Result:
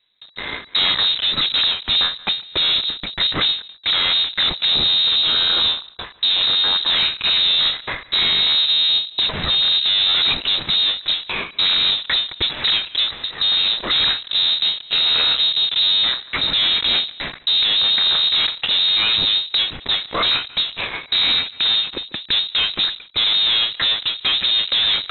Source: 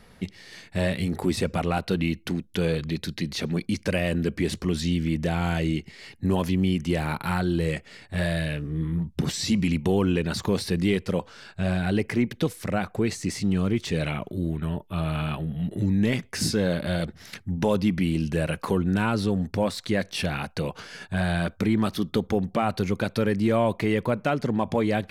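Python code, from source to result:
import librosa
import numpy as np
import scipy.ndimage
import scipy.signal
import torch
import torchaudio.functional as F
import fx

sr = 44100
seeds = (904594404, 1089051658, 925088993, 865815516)

p1 = fx.cvsd(x, sr, bps=64000)
p2 = fx.spec_erase(p1, sr, start_s=4.9, length_s=1.14, low_hz=720.0, high_hz=2300.0)
p3 = fx.level_steps(p2, sr, step_db=16)
p4 = fx.rotary_switch(p3, sr, hz=0.85, then_hz=6.7, switch_at_s=14.68)
p5 = fx.fuzz(p4, sr, gain_db=53.0, gate_db=-52.0)
p6 = p4 + (p5 * 10.0 ** (-4.0 / 20.0))
p7 = p6 + 10.0 ** (-22.0 / 20.0) * np.pad(p6, (int(144 * sr / 1000.0), 0))[:len(p6)]
p8 = fx.freq_invert(p7, sr, carrier_hz=3900)
y = fx.end_taper(p8, sr, db_per_s=150.0)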